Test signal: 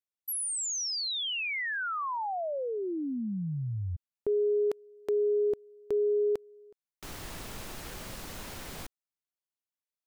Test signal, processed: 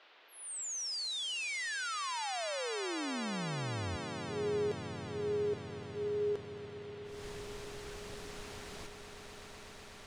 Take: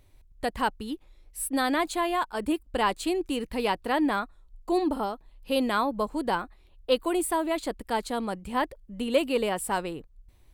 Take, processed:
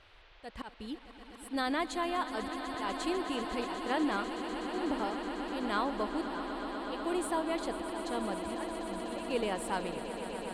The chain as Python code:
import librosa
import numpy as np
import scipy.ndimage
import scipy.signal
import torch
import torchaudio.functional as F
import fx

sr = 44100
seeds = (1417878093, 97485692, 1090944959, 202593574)

y = fx.high_shelf(x, sr, hz=5400.0, db=10.5)
y = fx.auto_swell(y, sr, attack_ms=229.0)
y = fx.dmg_noise_band(y, sr, seeds[0], low_hz=350.0, high_hz=3800.0, level_db=-54.0)
y = fx.air_absorb(y, sr, metres=86.0)
y = fx.echo_swell(y, sr, ms=124, loudest=8, wet_db=-13)
y = y * librosa.db_to_amplitude(-6.5)